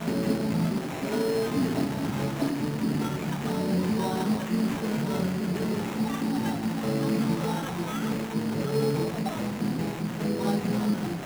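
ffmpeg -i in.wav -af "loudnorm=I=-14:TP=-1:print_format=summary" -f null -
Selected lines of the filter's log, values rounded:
Input Integrated:    -28.3 LUFS
Input True Peak:     -13.3 dBTP
Input LRA:             0.6 LU
Input Threshold:     -38.3 LUFS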